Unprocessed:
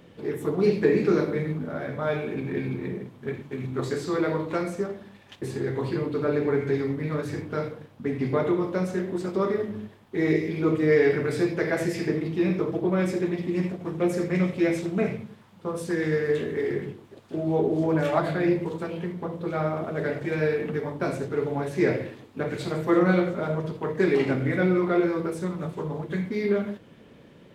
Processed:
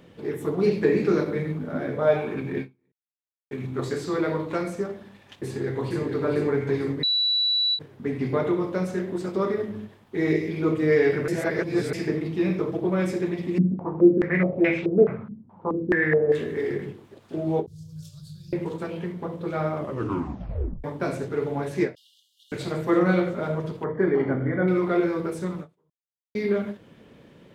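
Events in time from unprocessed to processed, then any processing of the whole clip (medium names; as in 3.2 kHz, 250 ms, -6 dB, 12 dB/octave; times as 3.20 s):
1.72–2.41 s: peaking EQ 210 Hz -> 1.4 kHz +9.5 dB
2.92–3.51 s: mute
5.45–6.02 s: echo throw 450 ms, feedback 55%, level -5 dB
7.03–7.79 s: bleep 3.94 kHz -19.5 dBFS
11.28–11.93 s: reverse
13.58–16.32 s: step-sequenced low-pass 4.7 Hz 230–2600 Hz
17.66–18.53 s: elliptic band-stop 120–4800 Hz
19.76 s: tape stop 1.08 s
21.95–22.52 s: brick-wall FIR high-pass 2.8 kHz
23.84–24.68 s: Savitzky-Golay filter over 41 samples
25.90–26.35 s: mute
whole clip: endings held to a fixed fall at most 280 dB/s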